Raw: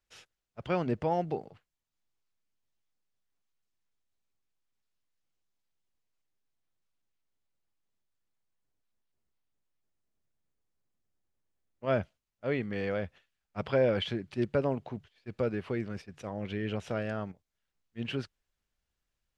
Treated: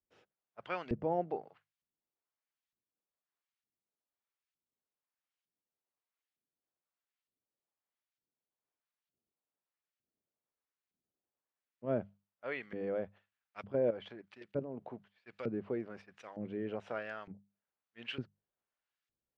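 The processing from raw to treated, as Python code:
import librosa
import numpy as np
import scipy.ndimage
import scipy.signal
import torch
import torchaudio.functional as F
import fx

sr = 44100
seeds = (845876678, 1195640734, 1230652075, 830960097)

y = fx.level_steps(x, sr, step_db=13, at=(13.62, 14.79))
y = fx.hum_notches(y, sr, base_hz=50, count=4)
y = fx.filter_lfo_bandpass(y, sr, shape='saw_up', hz=1.1, low_hz=210.0, high_hz=2800.0, q=0.8)
y = F.gain(torch.from_numpy(y), -1.5).numpy()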